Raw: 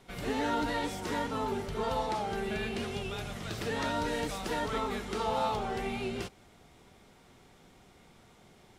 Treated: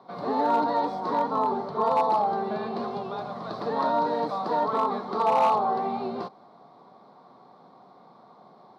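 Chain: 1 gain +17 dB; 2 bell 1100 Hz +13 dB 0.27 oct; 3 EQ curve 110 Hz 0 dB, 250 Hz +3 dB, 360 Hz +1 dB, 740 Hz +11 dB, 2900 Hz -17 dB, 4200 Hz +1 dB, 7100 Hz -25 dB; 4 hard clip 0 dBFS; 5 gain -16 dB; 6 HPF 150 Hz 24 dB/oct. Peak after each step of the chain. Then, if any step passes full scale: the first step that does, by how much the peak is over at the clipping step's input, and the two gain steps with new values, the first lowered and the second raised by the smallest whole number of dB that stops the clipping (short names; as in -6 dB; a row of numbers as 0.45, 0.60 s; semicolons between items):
-4.5, -0.5, +5.5, 0.0, -16.0, -12.5 dBFS; step 3, 5.5 dB; step 1 +11 dB, step 5 -10 dB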